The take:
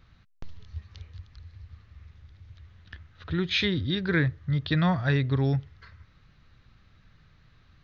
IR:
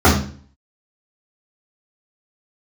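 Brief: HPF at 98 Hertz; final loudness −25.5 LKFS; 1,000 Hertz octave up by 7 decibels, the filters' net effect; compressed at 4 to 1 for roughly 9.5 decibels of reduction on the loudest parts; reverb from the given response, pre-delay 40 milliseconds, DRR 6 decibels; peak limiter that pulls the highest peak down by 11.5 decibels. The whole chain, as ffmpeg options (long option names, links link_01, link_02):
-filter_complex "[0:a]highpass=98,equalizer=frequency=1000:width_type=o:gain=9,acompressor=threshold=-30dB:ratio=4,alimiter=level_in=6.5dB:limit=-24dB:level=0:latency=1,volume=-6.5dB,asplit=2[link_01][link_02];[1:a]atrim=start_sample=2205,adelay=40[link_03];[link_02][link_03]afir=irnorm=-1:irlink=0,volume=-33dB[link_04];[link_01][link_04]amix=inputs=2:normalize=0,volume=11dB"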